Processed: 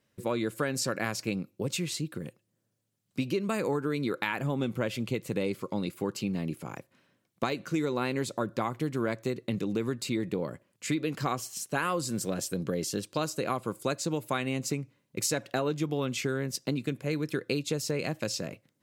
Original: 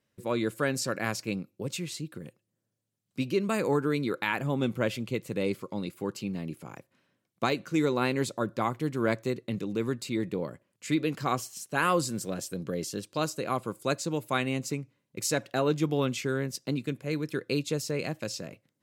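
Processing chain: compression, threshold -30 dBFS, peak gain reduction 9.5 dB; trim +4 dB

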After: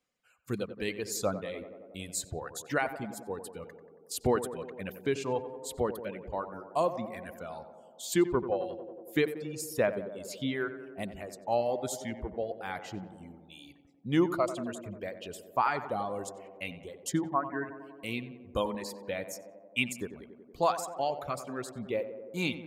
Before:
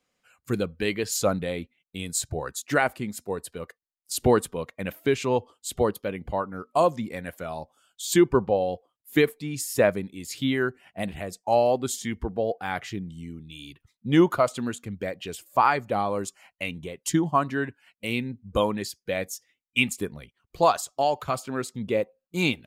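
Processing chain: reverb removal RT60 1.1 s; 17.25–17.66 s: steep low-pass 2.1 kHz 96 dB/octave; on a send: tape echo 91 ms, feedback 85%, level -10 dB, low-pass 1.4 kHz; on the sum: trim -7 dB

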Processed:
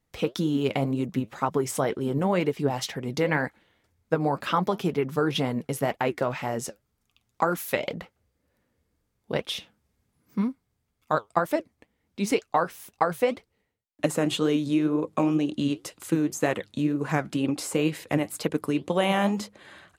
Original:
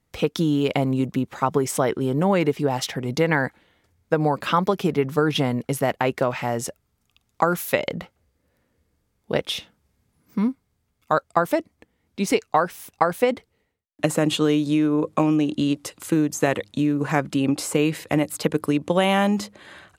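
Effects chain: flange 2 Hz, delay 1.6 ms, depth 8.6 ms, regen +66%

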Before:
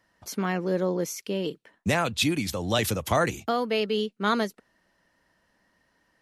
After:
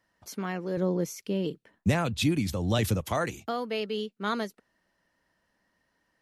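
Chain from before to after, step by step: 0.77–3.01 s: bass shelf 290 Hz +11 dB; trim -5.5 dB

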